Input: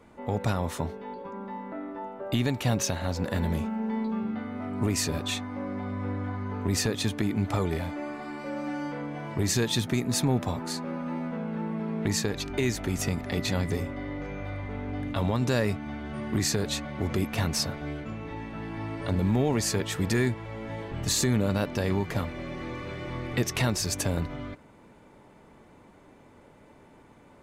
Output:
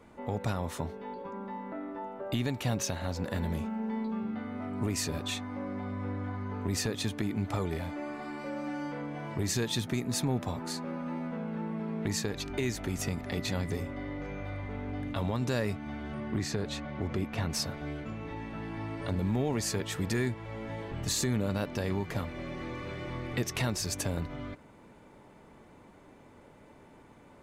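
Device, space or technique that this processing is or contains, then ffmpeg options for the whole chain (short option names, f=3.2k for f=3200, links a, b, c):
parallel compression: -filter_complex "[0:a]asettb=1/sr,asplit=3[a][b][c];[a]atrim=end=16.144[d];[b]atrim=start=16.14:end=17.5,asetpts=PTS-STARTPTS,afade=t=in:d=0.004:c=qsin,afade=t=out:st=1.356:d=0.004:c=qsin,aemphasis=mode=reproduction:type=50kf[e];[c]atrim=start=17.496[f];[d][e]acrossfade=d=0.004:c1=hsin:c2=qsin[g];[g][f]acrossfade=d=0.004:c1=qsin:c2=hsin,asplit=2[h][i];[i]acompressor=threshold=-36dB:ratio=6,volume=-1dB[j];[h][j]amix=inputs=2:normalize=0,volume=-6.5dB"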